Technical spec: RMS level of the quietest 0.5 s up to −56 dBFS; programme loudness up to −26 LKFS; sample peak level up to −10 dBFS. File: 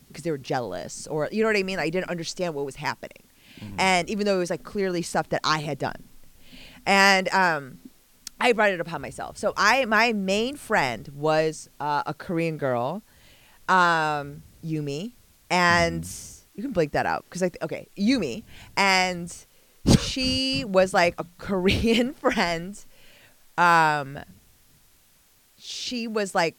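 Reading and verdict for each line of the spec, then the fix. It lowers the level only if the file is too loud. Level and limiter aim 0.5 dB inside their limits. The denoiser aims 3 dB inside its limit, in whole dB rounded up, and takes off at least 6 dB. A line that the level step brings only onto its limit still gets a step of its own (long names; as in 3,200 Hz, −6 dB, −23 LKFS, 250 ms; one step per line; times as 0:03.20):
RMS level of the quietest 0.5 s −60 dBFS: in spec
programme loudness −24.0 LKFS: out of spec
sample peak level −3.5 dBFS: out of spec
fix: level −2.5 dB
brickwall limiter −10.5 dBFS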